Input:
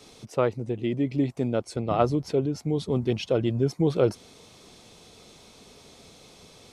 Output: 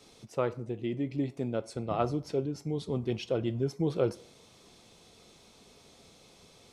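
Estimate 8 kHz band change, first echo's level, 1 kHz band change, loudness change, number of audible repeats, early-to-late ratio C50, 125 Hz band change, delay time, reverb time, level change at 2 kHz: -6.5 dB, no echo, -6.0 dB, -6.5 dB, no echo, 19.0 dB, -6.5 dB, no echo, 0.50 s, -6.0 dB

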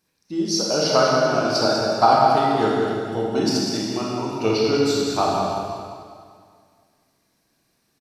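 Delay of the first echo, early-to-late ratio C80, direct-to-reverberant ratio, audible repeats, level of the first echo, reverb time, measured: 197 ms, -1.0 dB, -4.5 dB, 1, -7.0 dB, 2.0 s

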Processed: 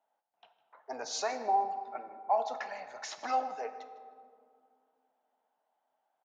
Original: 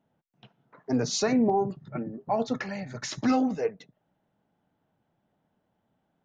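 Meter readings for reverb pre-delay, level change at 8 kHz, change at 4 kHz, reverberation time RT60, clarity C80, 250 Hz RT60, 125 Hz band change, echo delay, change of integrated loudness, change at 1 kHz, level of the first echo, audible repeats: 3 ms, no reading, -7.0 dB, 2.3 s, 11.0 dB, 3.1 s, under -30 dB, 155 ms, -6.5 dB, +1.5 dB, -18.0 dB, 1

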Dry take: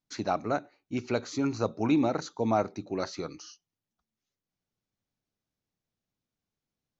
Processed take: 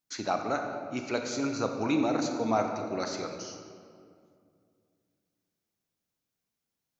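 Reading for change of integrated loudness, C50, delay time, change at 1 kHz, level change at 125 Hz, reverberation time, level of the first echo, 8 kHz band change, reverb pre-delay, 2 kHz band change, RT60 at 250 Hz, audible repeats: -0.5 dB, 5.0 dB, no echo, +1.0 dB, -4.0 dB, 2.3 s, no echo, no reading, 30 ms, +2.5 dB, 2.8 s, no echo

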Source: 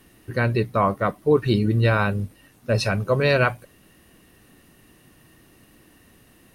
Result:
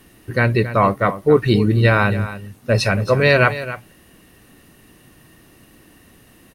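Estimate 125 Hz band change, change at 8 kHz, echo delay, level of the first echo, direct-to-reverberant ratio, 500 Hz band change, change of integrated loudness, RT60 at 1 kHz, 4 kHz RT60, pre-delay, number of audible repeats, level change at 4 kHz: +4.5 dB, +4.5 dB, 272 ms, -13.5 dB, no reverb, +4.5 dB, +5.0 dB, no reverb, no reverb, no reverb, 1, +5.0 dB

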